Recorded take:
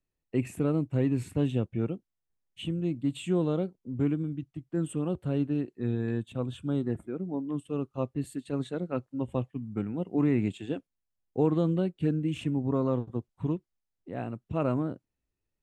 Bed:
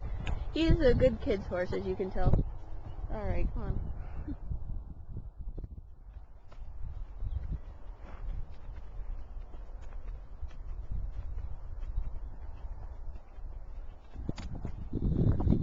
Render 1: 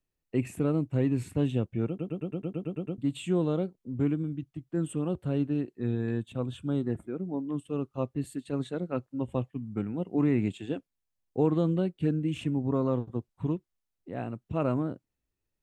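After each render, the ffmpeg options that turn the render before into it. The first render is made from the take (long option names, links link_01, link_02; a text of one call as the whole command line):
ffmpeg -i in.wav -filter_complex "[0:a]asplit=11[link_01][link_02][link_03][link_04][link_05][link_06][link_07][link_08][link_09][link_10][link_11];[link_01]atrim=end=1.992[link_12];[link_02]atrim=start=1.878:end=1.992[link_13];[link_03]atrim=start=1.878:end=1.992[link_14];[link_04]atrim=start=1.878:end=1.992[link_15];[link_05]atrim=start=1.878:end=1.992[link_16];[link_06]atrim=start=1.878:end=1.992[link_17];[link_07]atrim=start=1.878:end=1.992[link_18];[link_08]atrim=start=1.878:end=1.992[link_19];[link_09]atrim=start=1.878:end=1.992[link_20];[link_10]atrim=start=1.878:end=1.992[link_21];[link_11]atrim=start=2.978[link_22];[link_12][link_13]acrossfade=duration=0.004:curve1=hsin:curve2=hsin[link_23];[link_23][link_14]acrossfade=duration=0.004:curve1=hsin:curve2=hsin[link_24];[link_24][link_15]acrossfade=duration=0.004:curve1=hsin:curve2=hsin[link_25];[link_25][link_16]acrossfade=duration=0.004:curve1=hsin:curve2=hsin[link_26];[link_26][link_17]acrossfade=duration=0.004:curve1=hsin:curve2=hsin[link_27];[link_27][link_18]acrossfade=duration=0.004:curve1=hsin:curve2=hsin[link_28];[link_28][link_19]acrossfade=duration=0.004:curve1=hsin:curve2=hsin[link_29];[link_29][link_20]acrossfade=duration=0.004:curve1=hsin:curve2=hsin[link_30];[link_30][link_21]acrossfade=duration=0.004:curve1=hsin:curve2=hsin[link_31];[link_31][link_22]acrossfade=duration=0.004:curve1=hsin:curve2=hsin" out.wav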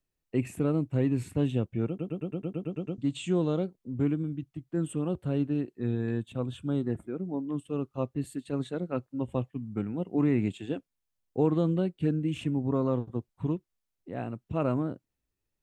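ffmpeg -i in.wav -filter_complex "[0:a]asettb=1/sr,asplit=3[link_01][link_02][link_03];[link_01]atrim=end=2.724[link_04];[link_02]atrim=start=2.72:end=3.65,asetpts=PTS-STARTPTS,afade=type=in:duration=0.004:curve=qsin,afade=type=out:start_time=0.926:duration=0.004:curve=qsin,lowpass=frequency=6400:width_type=q:width=2.1[link_05];[link_03]atrim=start=3.646[link_06];[link_04][link_05]acrossfade=duration=0.004:curve1=hsin:curve2=qsin[link_07];[link_07][link_06]acrossfade=duration=0.004:curve1=qsin:curve2=hsin" out.wav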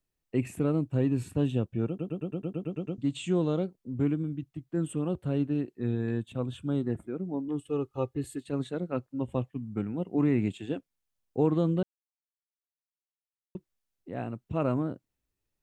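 ffmpeg -i in.wav -filter_complex "[0:a]asettb=1/sr,asplit=3[link_01][link_02][link_03];[link_01]atrim=end=0.814[link_04];[link_02]atrim=start=0.81:end=2.62,asetpts=PTS-STARTPTS,afade=type=in:duration=0.004:curve=qsin,afade=type=out:start_time=1.806:duration=0.004:curve=qsin,bandreject=frequency=2100:width=5.7[link_05];[link_03]atrim=start=2.616[link_06];[link_04][link_05]acrossfade=duration=0.004:curve1=hsin:curve2=qsin[link_07];[link_07][link_06]acrossfade=duration=0.004:curve1=qsin:curve2=hsin,asettb=1/sr,asplit=3[link_08][link_09][link_10];[link_08]atrim=end=7.484[link_11];[link_09]atrim=start=7.48:end=8.43,asetpts=PTS-STARTPTS,afade=type=in:duration=0.004:curve=qsin,afade=type=out:start_time=0.946:duration=0.004:curve=qsin,aecho=1:1:2.4:0.65,atrim=end_sample=41895[link_12];[link_10]atrim=start=8.426[link_13];[link_11][link_12]acrossfade=duration=0.004:curve1=hsin:curve2=qsin[link_14];[link_14][link_13]acrossfade=duration=0.004:curve1=qsin:curve2=hsin,asplit=3[link_15][link_16][link_17];[link_15]atrim=end=11.83,asetpts=PTS-STARTPTS,afade=type=out:start_time=11.826:duration=0.004:curve=hsin[link_18];[link_16]atrim=start=11.83:end=13.55,asetpts=PTS-STARTPTS,volume=0[link_19];[link_17]atrim=start=13.55,asetpts=PTS-STARTPTS,afade=type=in:duration=0.004:curve=hsin[link_20];[link_18][link_19][link_20]concat=n=3:v=0:a=1" out.wav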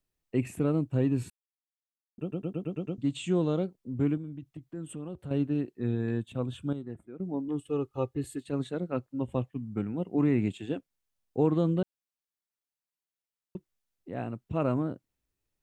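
ffmpeg -i in.wav -filter_complex "[0:a]asettb=1/sr,asplit=3[link_01][link_02][link_03];[link_01]atrim=end=4.174[link_04];[link_02]atrim=start=4.17:end=5.31,asetpts=PTS-STARTPTS,afade=type=in:duration=0.004:curve=qsin,afade=type=out:start_time=1.136:duration=0.004:curve=qsin,acompressor=threshold=-39dB:ratio=2.5:attack=3.2:release=140:knee=1:detection=peak[link_05];[link_03]atrim=start=5.306[link_06];[link_04][link_05]acrossfade=duration=0.004:curve1=hsin:curve2=qsin[link_07];[link_07][link_06]acrossfade=duration=0.004:curve1=qsin:curve2=hsin,asplit=5[link_08][link_09][link_10][link_11][link_12];[link_08]atrim=end=1.3,asetpts=PTS-STARTPTS,afade=type=out:start_time=1.296:duration=0.004:curve=hsin[link_13];[link_09]atrim=start=1.3:end=2.18,asetpts=PTS-STARTPTS,volume=0[link_14];[link_10]atrim=start=2.18:end=6.732,asetpts=PTS-STARTPTS,afade=type=in:duration=0.004:curve=hsin[link_15];[link_11]atrim=start=6.728:end=7.202,asetpts=PTS-STARTPTS,volume=-9.5dB[link_16];[link_12]atrim=start=7.198[link_17];[link_13][link_14][link_15]concat=n=3:v=0:a=1[link_18];[link_18][link_16]acrossfade=duration=0.004:curve1=hsin:curve2=hsin[link_19];[link_19][link_17]acrossfade=duration=0.004:curve1=hsin:curve2=hsin" out.wav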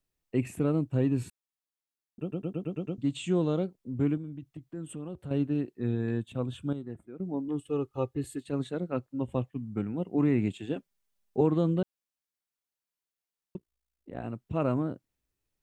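ffmpeg -i in.wav -filter_complex "[0:a]asettb=1/sr,asplit=3[link_01][link_02][link_03];[link_01]atrim=end=10.764[link_04];[link_02]atrim=start=10.76:end=11.41,asetpts=PTS-STARTPTS,afade=type=in:duration=0.004:curve=qsin,afade=type=out:start_time=0.646:duration=0.004:curve=qsin,aecho=1:1:5:0.8,atrim=end_sample=28665[link_05];[link_03]atrim=start=11.406[link_06];[link_04][link_05]acrossfade=duration=0.004:curve1=hsin:curve2=qsin[link_07];[link_07][link_06]acrossfade=duration=0.004:curve1=qsin:curve2=hsin,asplit=3[link_08][link_09][link_10];[link_08]afade=type=out:start_time=13.56:duration=0.02[link_11];[link_09]tremolo=f=56:d=0.974,afade=type=in:start_time=13.56:duration=0.02,afade=type=out:start_time=14.23:duration=0.02[link_12];[link_10]afade=type=in:start_time=14.23:duration=0.02[link_13];[link_11][link_12][link_13]amix=inputs=3:normalize=0" out.wav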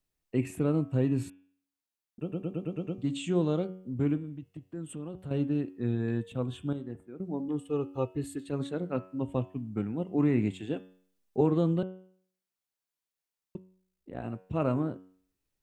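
ffmpeg -i in.wav -af "bandreject=frequency=93.05:width_type=h:width=4,bandreject=frequency=186.1:width_type=h:width=4,bandreject=frequency=279.15:width_type=h:width=4,bandreject=frequency=372.2:width_type=h:width=4,bandreject=frequency=465.25:width_type=h:width=4,bandreject=frequency=558.3:width_type=h:width=4,bandreject=frequency=651.35:width_type=h:width=4,bandreject=frequency=744.4:width_type=h:width=4,bandreject=frequency=837.45:width_type=h:width=4,bandreject=frequency=930.5:width_type=h:width=4,bandreject=frequency=1023.55:width_type=h:width=4,bandreject=frequency=1116.6:width_type=h:width=4,bandreject=frequency=1209.65:width_type=h:width=4,bandreject=frequency=1302.7:width_type=h:width=4,bandreject=frequency=1395.75:width_type=h:width=4,bandreject=frequency=1488.8:width_type=h:width=4,bandreject=frequency=1581.85:width_type=h:width=4,bandreject=frequency=1674.9:width_type=h:width=4,bandreject=frequency=1767.95:width_type=h:width=4,bandreject=frequency=1861:width_type=h:width=4,bandreject=frequency=1954.05:width_type=h:width=4,bandreject=frequency=2047.1:width_type=h:width=4,bandreject=frequency=2140.15:width_type=h:width=4,bandreject=frequency=2233.2:width_type=h:width=4,bandreject=frequency=2326.25:width_type=h:width=4,bandreject=frequency=2419.3:width_type=h:width=4,bandreject=frequency=2512.35:width_type=h:width=4,bandreject=frequency=2605.4:width_type=h:width=4,bandreject=frequency=2698.45:width_type=h:width=4,bandreject=frequency=2791.5:width_type=h:width=4,bandreject=frequency=2884.55:width_type=h:width=4,bandreject=frequency=2977.6:width_type=h:width=4,bandreject=frequency=3070.65:width_type=h:width=4,bandreject=frequency=3163.7:width_type=h:width=4,bandreject=frequency=3256.75:width_type=h:width=4,bandreject=frequency=3349.8:width_type=h:width=4,bandreject=frequency=3442.85:width_type=h:width=4,bandreject=frequency=3535.9:width_type=h:width=4" out.wav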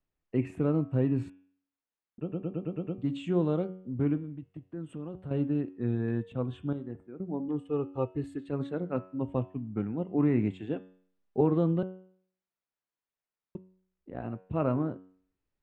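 ffmpeg -i in.wav -af "lowpass=1700,aemphasis=mode=production:type=75kf" out.wav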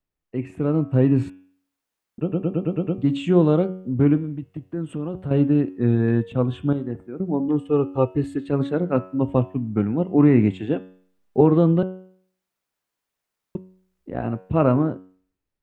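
ffmpeg -i in.wav -af "dynaudnorm=framelen=140:gausssize=11:maxgain=11dB" out.wav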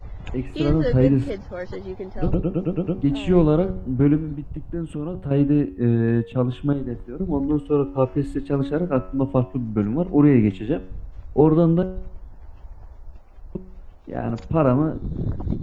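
ffmpeg -i in.wav -i bed.wav -filter_complex "[1:a]volume=1.5dB[link_01];[0:a][link_01]amix=inputs=2:normalize=0" out.wav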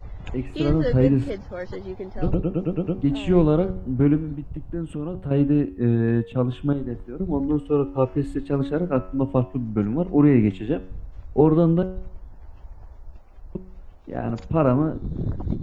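ffmpeg -i in.wav -af "volume=-1dB" out.wav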